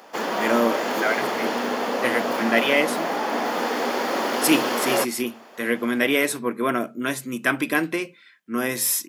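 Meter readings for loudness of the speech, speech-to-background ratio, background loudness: -24.0 LUFS, 1.0 dB, -25.0 LUFS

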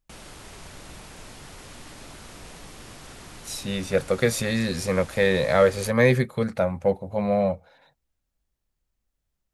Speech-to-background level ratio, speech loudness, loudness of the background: 20.0 dB, -23.5 LUFS, -43.5 LUFS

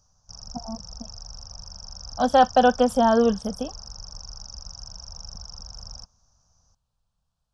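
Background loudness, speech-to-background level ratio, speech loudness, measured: -39.5 LUFS, 19.5 dB, -20.0 LUFS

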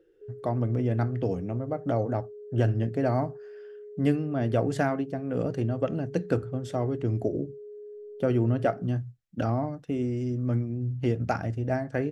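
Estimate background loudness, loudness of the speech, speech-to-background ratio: -44.5 LUFS, -29.0 LUFS, 15.5 dB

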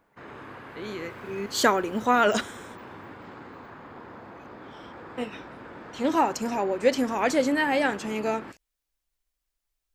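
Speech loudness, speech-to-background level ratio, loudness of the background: -25.5 LUFS, 17.5 dB, -43.0 LUFS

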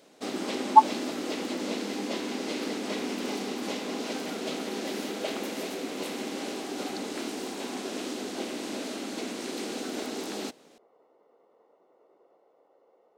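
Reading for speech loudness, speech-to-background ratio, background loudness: -21.5 LUFS, 12.0 dB, -33.5 LUFS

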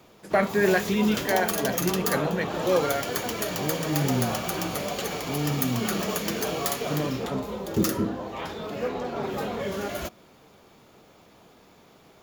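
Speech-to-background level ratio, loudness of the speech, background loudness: 1.0 dB, -28.0 LUFS, -29.0 LUFS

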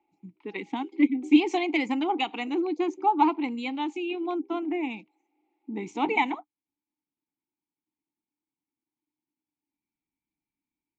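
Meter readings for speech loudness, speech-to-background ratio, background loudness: -27.0 LUFS, 19.5 dB, -46.5 LUFS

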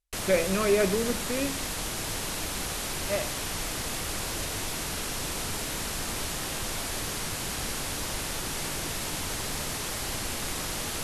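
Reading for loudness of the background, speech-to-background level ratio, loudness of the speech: -31.0 LUFS, 2.5 dB, -28.5 LUFS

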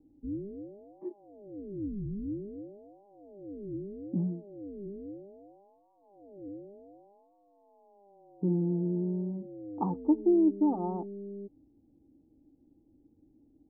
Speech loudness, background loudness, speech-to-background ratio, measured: -30.0 LUFS, -43.0 LUFS, 13.0 dB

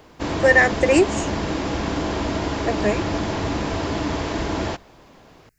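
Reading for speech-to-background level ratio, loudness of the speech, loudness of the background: 5.5 dB, -19.5 LUFS, -25.0 LUFS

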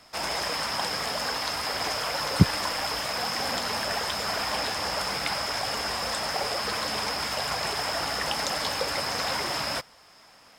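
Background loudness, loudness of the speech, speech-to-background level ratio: -28.0 LUFS, -25.0 LUFS, 3.0 dB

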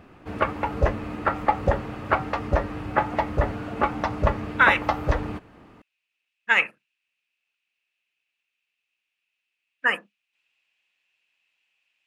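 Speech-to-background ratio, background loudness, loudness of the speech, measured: 3.5 dB, -26.0 LUFS, -22.5 LUFS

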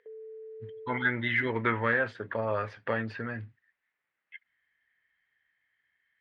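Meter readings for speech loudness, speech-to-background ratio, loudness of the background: -30.0 LUFS, 16.0 dB, -46.0 LUFS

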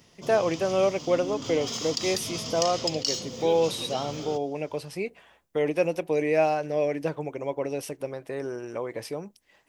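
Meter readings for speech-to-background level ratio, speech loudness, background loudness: 5.0 dB, -28.0 LUFS, -33.0 LUFS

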